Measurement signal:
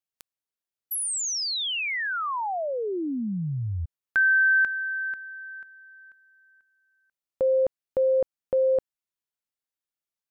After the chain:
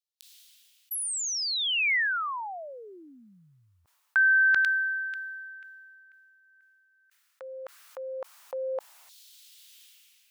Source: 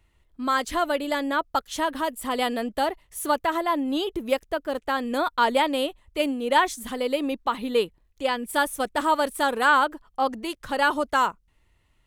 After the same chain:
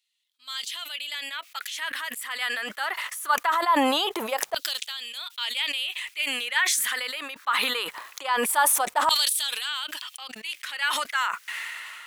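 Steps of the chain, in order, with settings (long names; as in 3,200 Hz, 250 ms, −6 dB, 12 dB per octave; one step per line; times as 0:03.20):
auto-filter high-pass saw down 0.22 Hz 790–4,000 Hz
level that may fall only so fast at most 23 dB per second
level −3.5 dB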